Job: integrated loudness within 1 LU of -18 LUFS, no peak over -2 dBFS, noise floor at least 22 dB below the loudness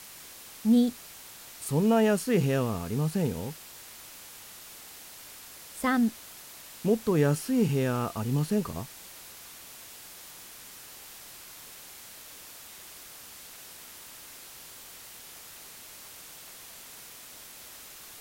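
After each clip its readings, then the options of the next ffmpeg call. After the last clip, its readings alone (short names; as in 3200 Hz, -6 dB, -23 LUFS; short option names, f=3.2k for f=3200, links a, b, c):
noise floor -47 dBFS; noise floor target -50 dBFS; loudness -27.5 LUFS; peak -12.0 dBFS; loudness target -18.0 LUFS
-> -af "afftdn=nr=6:nf=-47"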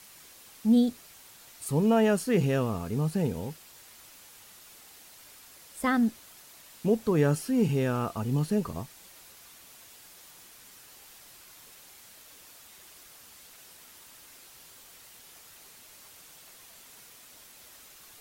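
noise floor -53 dBFS; loudness -27.5 LUFS; peak -12.0 dBFS; loudness target -18.0 LUFS
-> -af "volume=9.5dB"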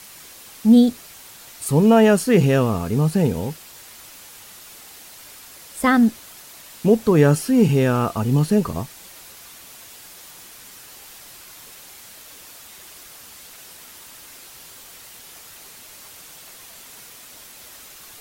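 loudness -18.0 LUFS; peak -2.5 dBFS; noise floor -43 dBFS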